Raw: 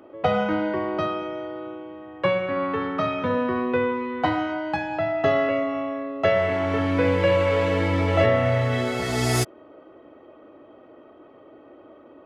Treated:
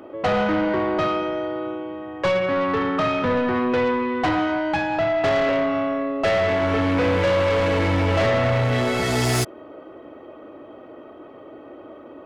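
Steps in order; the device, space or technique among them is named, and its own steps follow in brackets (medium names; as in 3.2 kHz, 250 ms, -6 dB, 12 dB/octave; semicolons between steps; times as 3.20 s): saturation between pre-emphasis and de-emphasis (treble shelf 9.3 kHz +9 dB; saturation -23.5 dBFS, distortion -9 dB; treble shelf 9.3 kHz -9 dB); trim +7 dB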